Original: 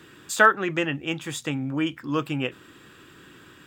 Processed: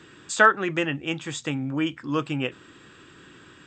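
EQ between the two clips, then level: brick-wall FIR low-pass 8500 Hz; 0.0 dB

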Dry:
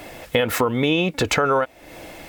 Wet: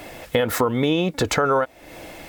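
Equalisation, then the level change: dynamic EQ 2600 Hz, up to -7 dB, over -38 dBFS, Q 2.3; 0.0 dB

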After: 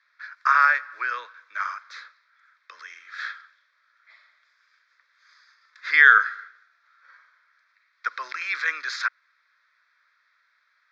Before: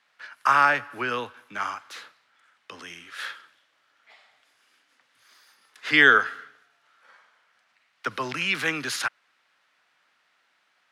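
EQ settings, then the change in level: HPF 700 Hz 24 dB/oct; air absorption 140 m; fixed phaser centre 2900 Hz, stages 6; +4.5 dB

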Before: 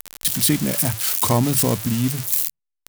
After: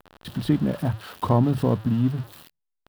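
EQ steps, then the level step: air absorption 480 m; bell 2200 Hz -11 dB 0.46 oct; 0.0 dB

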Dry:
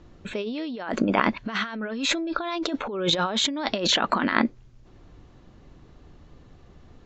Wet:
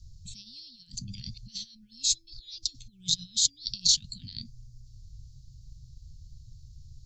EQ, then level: Chebyshev band-stop 130–4600 Hz, order 4; low shelf 370 Hz -4 dB; bell 2000 Hz -3 dB 0.2 oct; +8.0 dB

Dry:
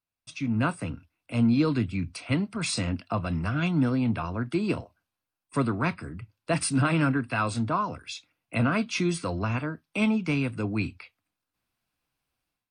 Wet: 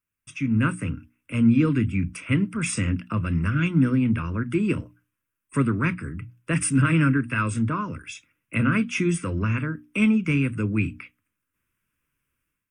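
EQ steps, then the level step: notches 60/120/180/240/300 Hz; fixed phaser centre 1800 Hz, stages 4; dynamic EQ 940 Hz, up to -4 dB, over -41 dBFS, Q 0.9; +6.5 dB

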